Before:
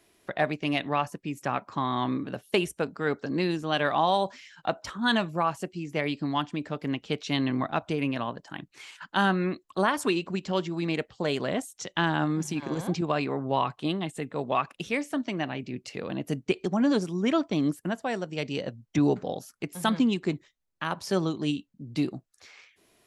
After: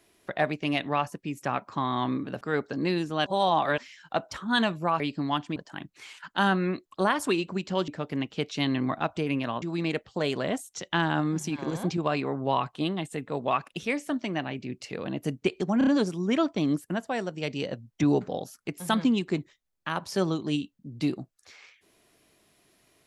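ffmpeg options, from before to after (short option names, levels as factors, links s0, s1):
-filter_complex "[0:a]asplit=11[s0][s1][s2][s3][s4][s5][s6][s7][s8][s9][s10];[s0]atrim=end=2.412[s11];[s1]atrim=start=2.938:end=3.792[s12];[s2]atrim=start=3.788:end=4.312,asetpts=PTS-STARTPTS,areverse[s13];[s3]atrim=start=4.308:end=5.532[s14];[s4]atrim=start=6.038:end=6.602[s15];[s5]atrim=start=8.338:end=10.662[s16];[s6]atrim=start=6.598:end=8.342[s17];[s7]atrim=start=10.658:end=16.852[s18];[s8]atrim=start=16.818:end=16.852[s19];[s9]atrim=start=16.818:end=16.852[s20];[s10]atrim=start=16.818[s21];[s11][s12]acrossfade=d=0.004:c1=hsin:c2=hsin[s22];[s22][s13]acrossfade=d=0.004:c1=hsin:c2=hsin[s23];[s23][s14]acrossfade=d=0.004:c1=hsin:c2=hsin[s24];[s24][s15]acrossfade=d=0.004:c1=hsin:c2=hsin[s25];[s25][s16]acrossfade=d=0.004:c1=hsin:c2=hsin[s26];[s26][s17]acrossfade=d=0.004:c1=hsin:c2=hsin[s27];[s27][s18]acrossfade=d=0.004:c1=hsin:c2=hsin[s28];[s28][s19]acrossfade=d=0.004:c1=hsin:c2=hsin[s29];[s29][s20]acrossfade=d=0.004:c1=hsin:c2=hsin[s30];[s30][s21]acrossfade=d=0.004:c1=hsin:c2=hsin"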